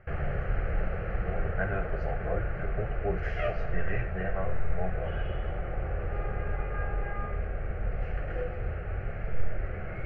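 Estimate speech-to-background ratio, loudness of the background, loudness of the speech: -2.5 dB, -35.0 LUFS, -37.5 LUFS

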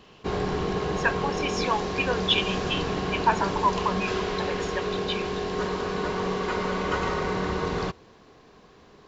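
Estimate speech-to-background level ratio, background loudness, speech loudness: 0.0 dB, -28.5 LUFS, -28.5 LUFS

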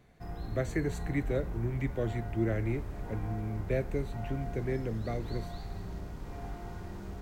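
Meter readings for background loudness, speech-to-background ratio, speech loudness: -41.5 LUFS, 6.5 dB, -35.0 LUFS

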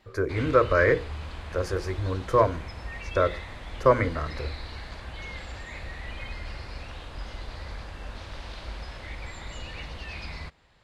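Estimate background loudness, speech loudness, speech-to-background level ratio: -39.5 LUFS, -25.5 LUFS, 14.0 dB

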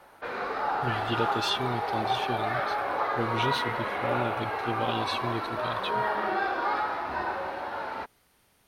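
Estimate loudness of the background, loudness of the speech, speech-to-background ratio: -30.0 LUFS, -34.0 LUFS, -4.0 dB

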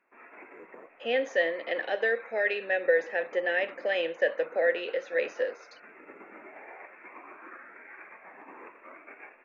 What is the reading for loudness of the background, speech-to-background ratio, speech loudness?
-48.5 LUFS, 20.0 dB, -28.5 LUFS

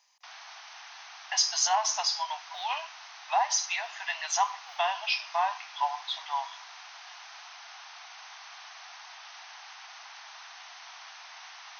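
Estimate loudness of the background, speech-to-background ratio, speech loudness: -45.5 LUFS, 16.0 dB, -29.5 LUFS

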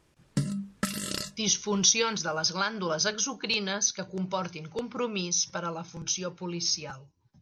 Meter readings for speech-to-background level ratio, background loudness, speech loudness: 5.0 dB, -33.0 LUFS, -28.0 LUFS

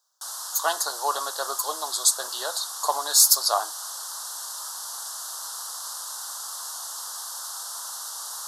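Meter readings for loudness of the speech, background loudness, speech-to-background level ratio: -23.0 LUFS, -32.5 LUFS, 9.5 dB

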